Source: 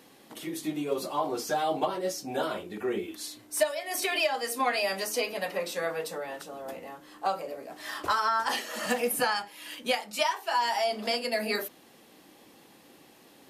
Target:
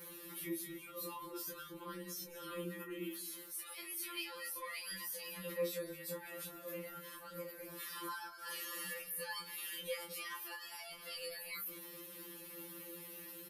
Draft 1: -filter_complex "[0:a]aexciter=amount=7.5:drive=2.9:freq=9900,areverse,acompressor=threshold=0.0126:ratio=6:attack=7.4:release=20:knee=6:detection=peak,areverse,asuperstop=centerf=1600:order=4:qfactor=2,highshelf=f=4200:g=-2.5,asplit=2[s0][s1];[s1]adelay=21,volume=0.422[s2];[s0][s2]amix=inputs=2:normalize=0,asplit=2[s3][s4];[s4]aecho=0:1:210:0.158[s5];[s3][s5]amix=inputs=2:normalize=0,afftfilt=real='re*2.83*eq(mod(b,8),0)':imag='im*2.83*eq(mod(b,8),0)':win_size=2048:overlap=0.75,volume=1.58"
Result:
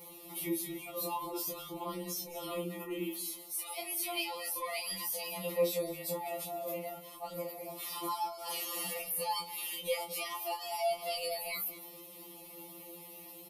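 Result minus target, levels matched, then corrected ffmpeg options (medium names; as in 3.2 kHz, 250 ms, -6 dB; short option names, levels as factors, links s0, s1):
compression: peak gain reduction -7 dB; 2 kHz band -5.0 dB
-filter_complex "[0:a]aexciter=amount=7.5:drive=2.9:freq=9900,areverse,acompressor=threshold=0.00473:ratio=6:attack=7.4:release=20:knee=6:detection=peak,areverse,asuperstop=centerf=740:order=4:qfactor=2,highshelf=f=4200:g=-2.5,asplit=2[s0][s1];[s1]adelay=21,volume=0.422[s2];[s0][s2]amix=inputs=2:normalize=0,asplit=2[s3][s4];[s4]aecho=0:1:210:0.158[s5];[s3][s5]amix=inputs=2:normalize=0,afftfilt=real='re*2.83*eq(mod(b,8),0)':imag='im*2.83*eq(mod(b,8),0)':win_size=2048:overlap=0.75,volume=1.58"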